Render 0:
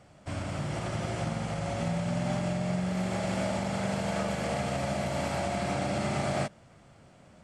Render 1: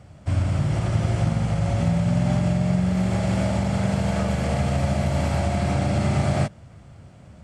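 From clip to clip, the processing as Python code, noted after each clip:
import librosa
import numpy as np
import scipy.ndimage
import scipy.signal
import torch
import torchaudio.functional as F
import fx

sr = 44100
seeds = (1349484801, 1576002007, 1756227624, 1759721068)

y = fx.peak_eq(x, sr, hz=80.0, db=14.0, octaves=2.0)
y = y * librosa.db_to_amplitude(3.0)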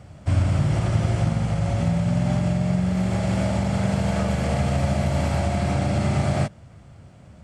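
y = fx.rider(x, sr, range_db=10, speed_s=2.0)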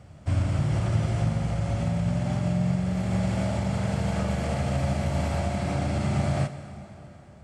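y = fx.rev_plate(x, sr, seeds[0], rt60_s=3.7, hf_ratio=0.75, predelay_ms=0, drr_db=10.0)
y = y * librosa.db_to_amplitude(-4.5)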